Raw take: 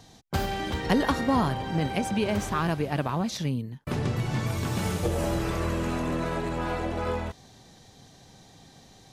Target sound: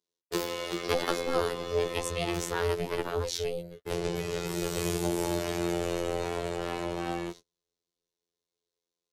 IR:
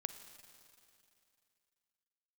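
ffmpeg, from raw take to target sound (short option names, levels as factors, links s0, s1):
-filter_complex "[0:a]agate=range=0.0158:threshold=0.00891:ratio=16:detection=peak,aeval=exprs='val(0)*sin(2*PI*270*n/s)':c=same,tiltshelf=f=1400:g=-9.5,afftfilt=real='hypot(re,im)*cos(PI*b)':imag='0':win_size=2048:overlap=0.75,equalizer=f=390:w=0.98:g=14,acrossover=split=160[s0][s1];[s0]dynaudnorm=f=290:g=11:m=2.99[s2];[s2][s1]amix=inputs=2:normalize=0"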